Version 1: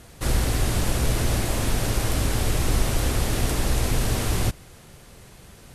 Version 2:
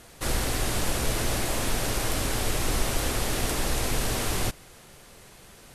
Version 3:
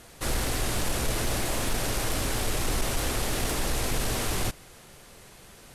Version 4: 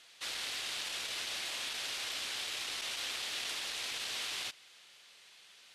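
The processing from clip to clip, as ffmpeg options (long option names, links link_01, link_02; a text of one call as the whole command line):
ffmpeg -i in.wav -af "equalizer=frequency=75:width=0.35:gain=-8.5" out.wav
ffmpeg -i in.wav -af "asoftclip=type=tanh:threshold=-17.5dB" out.wav
ffmpeg -i in.wav -af "bandpass=frequency=3400:width_type=q:width=1.5:csg=0" out.wav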